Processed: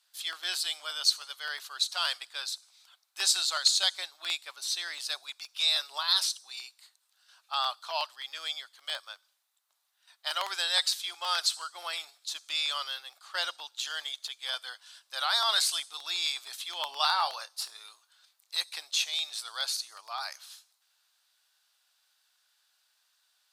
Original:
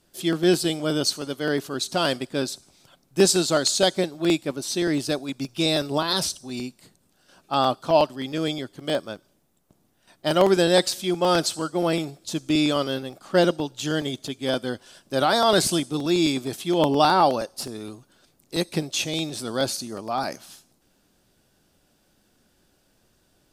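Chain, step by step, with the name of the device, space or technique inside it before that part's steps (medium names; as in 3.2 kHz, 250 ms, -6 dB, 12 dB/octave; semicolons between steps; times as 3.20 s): headphones lying on a table (high-pass 1 kHz 24 dB/octave; peaking EQ 4 kHz +7 dB 0.5 oct); 16.86–18.57 s: doubling 26 ms -11 dB; trim -5 dB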